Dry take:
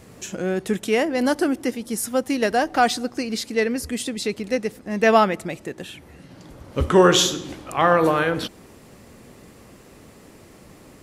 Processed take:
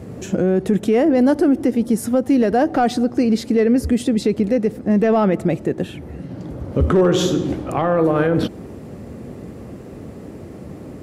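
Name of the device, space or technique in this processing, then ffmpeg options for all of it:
mastering chain: -af "highpass=frequency=55:width=0.5412,highpass=frequency=55:width=1.3066,equalizer=frequency=1000:width_type=o:width=0.51:gain=-3.5,acompressor=threshold=-23dB:ratio=1.5,asoftclip=type=tanh:threshold=-9.5dB,tiltshelf=frequency=1200:gain=9,asoftclip=type=hard:threshold=-7dB,alimiter=level_in=13dB:limit=-1dB:release=50:level=0:latency=1,volume=-7.5dB"

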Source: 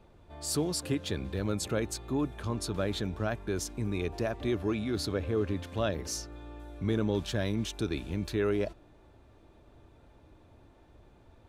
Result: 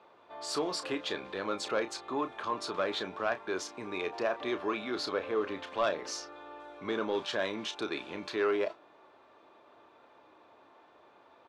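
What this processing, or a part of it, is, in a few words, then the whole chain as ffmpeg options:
intercom: -filter_complex "[0:a]highpass=490,lowpass=4200,equalizer=frequency=1100:width_type=o:width=0.49:gain=6.5,asoftclip=type=tanh:threshold=-23.5dB,asplit=2[link_01][link_02];[link_02]adelay=32,volume=-10.5dB[link_03];[link_01][link_03]amix=inputs=2:normalize=0,volume=4dB"

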